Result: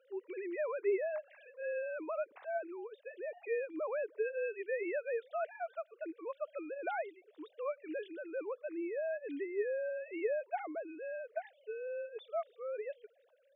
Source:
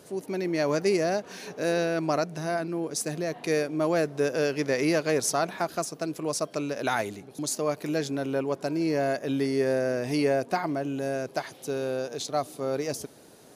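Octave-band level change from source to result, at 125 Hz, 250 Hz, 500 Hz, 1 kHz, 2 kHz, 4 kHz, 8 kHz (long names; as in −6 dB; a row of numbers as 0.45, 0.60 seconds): below −40 dB, −17.0 dB, −9.5 dB, −12.5 dB, −10.5 dB, below −25 dB, below −40 dB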